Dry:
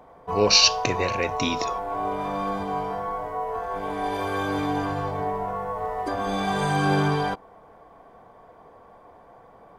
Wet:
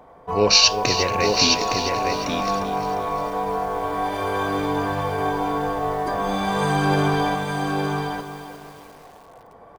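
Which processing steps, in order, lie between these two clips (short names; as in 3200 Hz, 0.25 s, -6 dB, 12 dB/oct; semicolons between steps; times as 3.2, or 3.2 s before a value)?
on a send: echo 0.864 s -4.5 dB; on the sum: lo-fi delay 0.352 s, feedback 55%, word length 7-bit, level -10 dB; gain +2 dB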